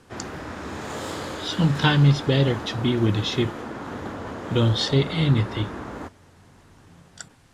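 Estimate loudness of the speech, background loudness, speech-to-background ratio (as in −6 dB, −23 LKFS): −22.0 LKFS, −34.0 LKFS, 12.0 dB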